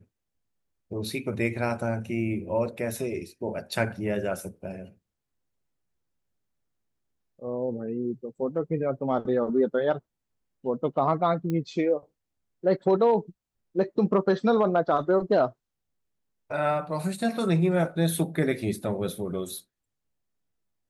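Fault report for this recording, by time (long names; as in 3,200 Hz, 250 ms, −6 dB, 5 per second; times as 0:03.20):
0:11.50: click −19 dBFS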